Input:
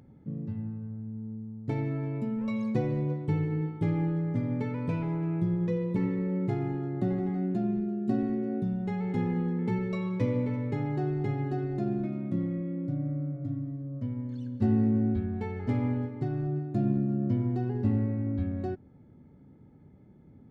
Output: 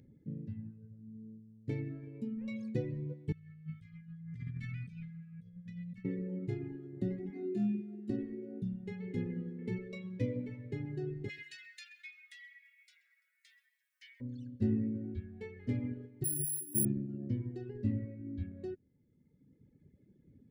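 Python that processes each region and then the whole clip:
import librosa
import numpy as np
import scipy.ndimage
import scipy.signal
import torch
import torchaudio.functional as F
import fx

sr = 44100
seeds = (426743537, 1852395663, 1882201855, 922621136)

y = fx.chain(x, sr, fx.brickwall_bandstop(low_hz=220.0, high_hz=1100.0),
    fx.over_compress(threshold_db=-36.0, ratio=-1.0), at=(3.32, 6.05))
y = fx.chain(y, sr, fx.highpass(hz=180.0, slope=12),
    fx.room_flutter(wall_m=4.2, rt60_s=0.68), at=(7.3, 8.1))
y = fx.spec_clip(y, sr, under_db=25, at=(11.28, 14.2), fade=0.02)
y = fx.steep_highpass(y, sr, hz=1800.0, slope=36, at=(11.28, 14.2), fade=0.02)
y = fx.echo_tape(y, sr, ms=129, feedback_pct=26, wet_db=-10, lp_hz=4000.0, drive_db=27.0, wow_cents=12, at=(11.28, 14.2), fade=0.02)
y = fx.chain(y, sr, fx.resample_bad(factor=4, down='filtered', up='zero_stuff'),
    fx.ensemble(), at=(16.24, 16.85))
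y = fx.dereverb_blind(y, sr, rt60_s=1.7)
y = fx.band_shelf(y, sr, hz=960.0, db=-15.0, octaves=1.3)
y = y * 10.0 ** (-5.0 / 20.0)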